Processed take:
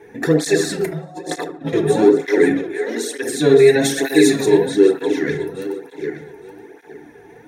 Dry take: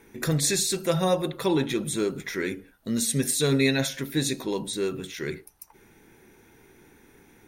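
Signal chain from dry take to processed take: regenerating reverse delay 0.436 s, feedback 41%, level -7.5 dB; in parallel at +1 dB: limiter -17 dBFS, peak gain reduction 7.5 dB; on the sum: high shelf 9200 Hz -10.5 dB; small resonant body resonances 430/710/1700 Hz, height 14 dB, ringing for 20 ms; 0.81–1.73 negative-ratio compressor -22 dBFS, ratio -0.5; 2.57–3.23 HPF 320 Hz 24 dB/oct; 3.81–4.46 high shelf 4400 Hz +11.5 dB; on a send: band-limited delay 74 ms, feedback 32%, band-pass 890 Hz, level -7 dB; on the sum: FDN reverb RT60 0.44 s, low-frequency decay 1.45×, high-frequency decay 0.55×, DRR 5 dB; tape flanging out of phase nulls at 1.1 Hz, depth 4.1 ms; gain -2 dB

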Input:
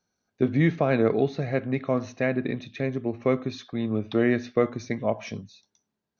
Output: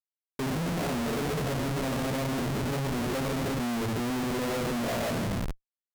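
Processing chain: median filter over 25 samples; two-slope reverb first 0.95 s, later 2.7 s, from -19 dB, DRR -6.5 dB; limiter -22 dBFS, peak gain reduction 18 dB; Schmitt trigger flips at -36 dBFS; speed mistake 24 fps film run at 25 fps

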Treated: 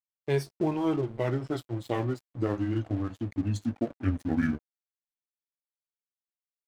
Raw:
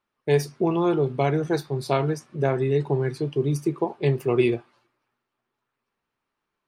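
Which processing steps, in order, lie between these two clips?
gliding pitch shift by -11 st starting unshifted; crossover distortion -40.5 dBFS; gain -4 dB

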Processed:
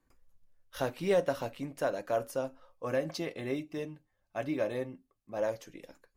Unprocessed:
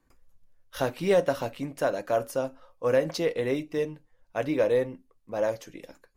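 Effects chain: 2.85–5.37 notch comb 480 Hz; gain -5 dB

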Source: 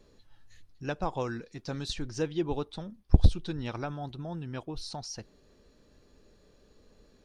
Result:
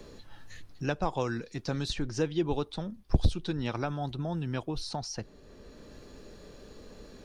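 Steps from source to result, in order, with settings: in parallel at -3.5 dB: soft clip -15.5 dBFS, distortion -8 dB; on the sum: three-band squash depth 40%; gain -1.5 dB

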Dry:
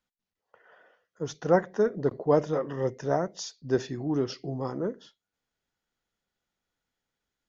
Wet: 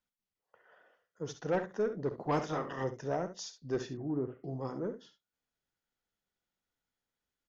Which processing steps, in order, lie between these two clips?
2.18–2.83 spectral limiter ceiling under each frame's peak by 16 dB; soft clip -17.5 dBFS, distortion -14 dB; 3.9–4.44 Gaussian blur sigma 5.9 samples; on a send: early reflections 52 ms -16 dB, 68 ms -12 dB; on the sum: gain -6 dB

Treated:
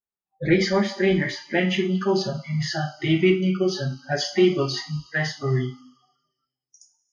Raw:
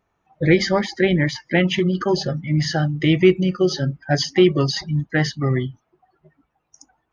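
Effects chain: two-slope reverb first 0.32 s, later 1.9 s, from -18 dB, DRR -1 dB; spectral noise reduction 28 dB; gain -6.5 dB

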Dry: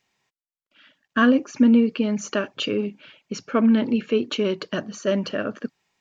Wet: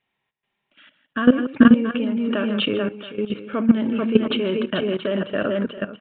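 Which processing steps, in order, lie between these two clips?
tapped delay 54/152/433/438/676 ms -20/-13/-15.5/-6/-12.5 dB; downsampling 8000 Hz; level quantiser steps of 14 dB; gain +6 dB

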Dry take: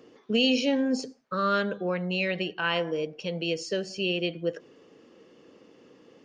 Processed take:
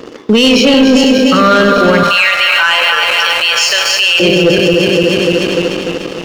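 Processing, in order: regenerating reverse delay 0.148 s, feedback 80%, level -7 dB; 2.03–4.2 HPF 890 Hz 24 dB/oct; sample leveller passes 2; Schroeder reverb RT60 0.49 s, DRR 14.5 dB; maximiser +25 dB; gain -1 dB

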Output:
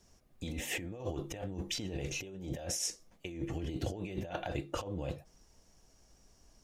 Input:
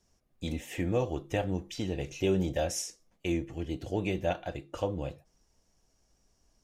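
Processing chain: negative-ratio compressor -39 dBFS, ratio -1

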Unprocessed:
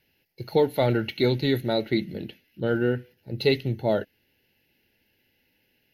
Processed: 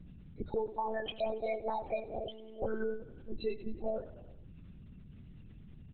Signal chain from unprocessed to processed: bell 190 Hz -15 dB 0.42 oct; compressor 8:1, threshold -31 dBFS, peak gain reduction 14.5 dB; hum 60 Hz, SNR 13 dB; loudest bins only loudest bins 16; 0.78–2.65 frequency shift +280 Hz; crackle 330/s -57 dBFS; feedback echo 94 ms, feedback 58%, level -16.5 dB; monotone LPC vocoder at 8 kHz 220 Hz

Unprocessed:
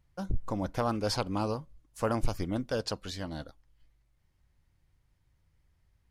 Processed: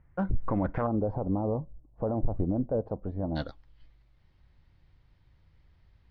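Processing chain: limiter -25.5 dBFS, peak gain reduction 10 dB; Chebyshev low-pass 1900 Hz, order 3, from 0.86 s 740 Hz, from 3.35 s 4300 Hz; gain +8 dB

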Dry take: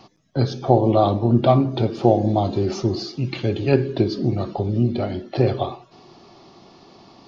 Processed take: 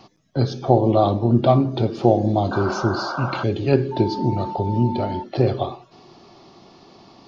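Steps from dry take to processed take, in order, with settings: dynamic EQ 2200 Hz, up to -3 dB, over -40 dBFS, Q 1.4; 2.51–3.44 painted sound noise 510–1600 Hz -28 dBFS; 3.91–5.22 whine 890 Hz -28 dBFS

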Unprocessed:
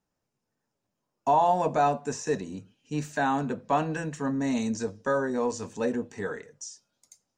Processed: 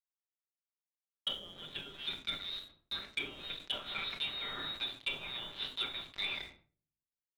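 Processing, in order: inverted band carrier 4000 Hz; steep high-pass 270 Hz 96 dB/oct; echo 0.158 s -17.5 dB; requantised 6-bit, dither none; compressor 6:1, threshold -24 dBFS, peak gain reduction 6.5 dB; air absorption 280 m; crossover distortion -55 dBFS; treble ducked by the level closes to 930 Hz, closed at -30.5 dBFS; reverb RT60 0.55 s, pre-delay 5 ms, DRR 5.5 dB; sample leveller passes 1; 1.32–3.72 dynamic EQ 950 Hz, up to -6 dB, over -58 dBFS, Q 0.89; sustainer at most 140 dB/s

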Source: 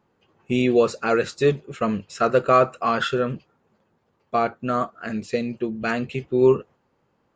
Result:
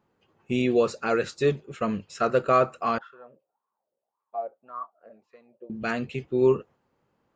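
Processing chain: 2.98–5.7 wah 1.8 Hz 530–1100 Hz, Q 9.3; gain -4 dB

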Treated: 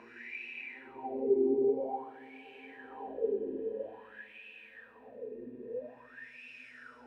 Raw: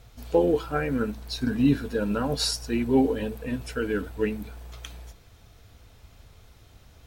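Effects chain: Paulstretch 7.8×, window 0.50 s, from 2.74; wah 0.5 Hz 350–2600 Hz, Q 10; gain +3 dB

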